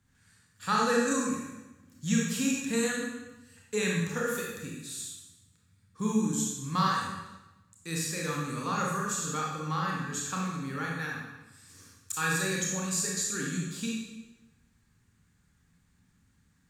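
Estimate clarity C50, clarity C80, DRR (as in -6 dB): 0.5 dB, 4.0 dB, -2.5 dB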